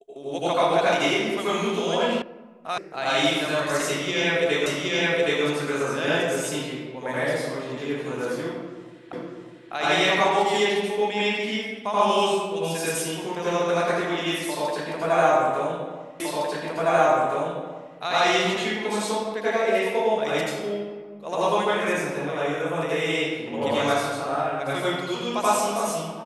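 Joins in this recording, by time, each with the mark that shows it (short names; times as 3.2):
2.22 sound cut off
2.78 sound cut off
4.66 repeat of the last 0.77 s
9.13 repeat of the last 0.6 s
16.2 repeat of the last 1.76 s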